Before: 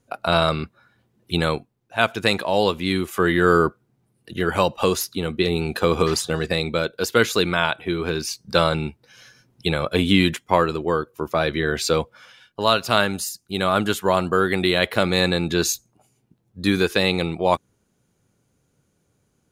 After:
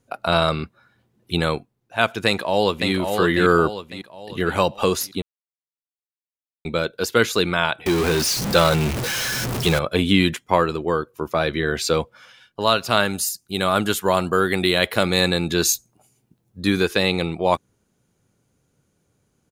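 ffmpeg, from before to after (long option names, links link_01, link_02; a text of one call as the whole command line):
ffmpeg -i in.wav -filter_complex "[0:a]asplit=2[link_01][link_02];[link_02]afade=type=in:start_time=2.26:duration=0.01,afade=type=out:start_time=2.91:duration=0.01,aecho=0:1:550|1100|1650|2200|2750|3300:0.562341|0.253054|0.113874|0.0512434|0.0230595|0.0103768[link_03];[link_01][link_03]amix=inputs=2:normalize=0,asettb=1/sr,asplit=3[link_04][link_05][link_06];[link_04]atrim=end=7.864[link_07];[link_05]atrim=start=7.86:end=9.79,asetpts=PTS-STARTPTS,afade=type=in:duration=0.004:curve=qsin,afade=type=out:start_time=1.926:duration=0.004:curve=qsin,aeval=exprs='val(0)+0.5*0.112*sgn(val(0))':channel_layout=same[link_08];[link_06]atrim=start=9.786[link_09];[link_07][link_08]acrossfade=duration=0.004:curve1=hsin:curve2=qsin[link_10];[link_10][link_09]acrossfade=duration=0.004:curve1=qsin:curve2=hsin,asettb=1/sr,asplit=3[link_11][link_12][link_13];[link_11]atrim=end=13.054[link_14];[link_12]atrim=start=13.05:end=16.61,asetpts=PTS-STARTPTS,afade=type=in:duration=0.004:curve=qsin,afade=type=out:start_time=3.556:duration=0.004:curve=qsin,highshelf=frequency=6000:gain=7[link_15];[link_13]atrim=start=16.606[link_16];[link_14][link_15]acrossfade=duration=0.004:curve1=hsin:curve2=qsin[link_17];[link_17][link_16]acrossfade=duration=0.004:curve1=qsin:curve2=hsin,asplit=3[link_18][link_19][link_20];[link_18]atrim=end=5.22,asetpts=PTS-STARTPTS,afade=type=out:start_time=5.216:duration=0.004:curve=hsin[link_21];[link_19]atrim=start=5.22:end=6.65,asetpts=PTS-STARTPTS,volume=0[link_22];[link_20]atrim=start=6.65,asetpts=PTS-STARTPTS,afade=type=in:duration=0.004:curve=hsin[link_23];[link_21][link_22][link_23]concat=n=3:v=0:a=1" out.wav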